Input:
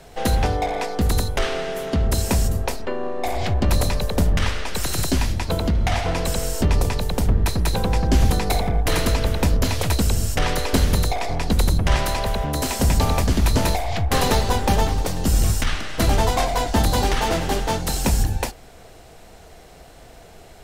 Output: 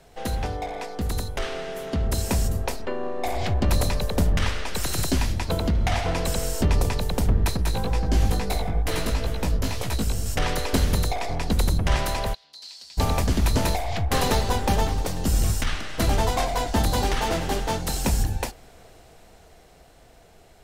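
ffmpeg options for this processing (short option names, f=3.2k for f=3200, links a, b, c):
-filter_complex "[0:a]asettb=1/sr,asplit=3[a][b][c];[a]atrim=end=7.574[d];[b]atrim=start=7.57:end=10.26,asetpts=PTS-STARTPTS,afade=t=in:d=0.004:c=qsin,afade=t=out:st=2.686:d=0.004:c=qsin,flanger=delay=15.5:depth=3.5:speed=2.2[e];[c]atrim=start=10.256[f];[d][e]acrossfade=d=0.004:c1=hsin:c2=qsin[g];[g][f]acrossfade=d=0.004:c1=qsin:c2=hsin,asplit=3[h][i][j];[h]afade=t=out:st=12.33:d=0.02[k];[i]bandpass=f=4.4k:t=q:w=7,afade=t=in:st=12.33:d=0.02,afade=t=out:st=12.97:d=0.02[l];[j]afade=t=in:st=12.97:d=0.02[m];[k][l][m]amix=inputs=3:normalize=0,dynaudnorm=f=230:g=17:m=11.5dB,volume=-8dB"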